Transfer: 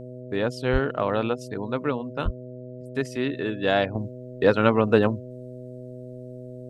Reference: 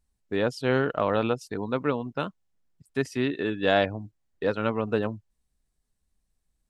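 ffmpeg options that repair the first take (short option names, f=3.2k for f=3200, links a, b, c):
-filter_complex "[0:a]bandreject=f=125.5:t=h:w=4,bandreject=f=251:t=h:w=4,bandreject=f=376.5:t=h:w=4,bandreject=f=502:t=h:w=4,bandreject=f=627.5:t=h:w=4,asplit=3[a][b][c];[a]afade=t=out:st=0.72:d=0.02[d];[b]highpass=f=140:w=0.5412,highpass=f=140:w=1.3066,afade=t=in:st=0.72:d=0.02,afade=t=out:st=0.84:d=0.02[e];[c]afade=t=in:st=0.84:d=0.02[f];[d][e][f]amix=inputs=3:normalize=0,asplit=3[g][h][i];[g]afade=t=out:st=2.24:d=0.02[j];[h]highpass=f=140:w=0.5412,highpass=f=140:w=1.3066,afade=t=in:st=2.24:d=0.02,afade=t=out:st=2.36:d=0.02[k];[i]afade=t=in:st=2.36:d=0.02[l];[j][k][l]amix=inputs=3:normalize=0,asetnsamples=n=441:p=0,asendcmd='3.95 volume volume -7.5dB',volume=0dB"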